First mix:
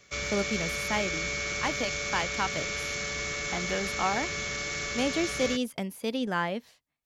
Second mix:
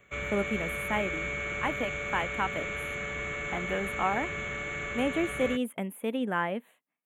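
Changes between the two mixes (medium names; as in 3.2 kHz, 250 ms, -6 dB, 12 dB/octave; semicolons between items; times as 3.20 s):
speech: add brick-wall FIR high-pass 160 Hz; master: add Butterworth band-stop 5.1 kHz, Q 0.84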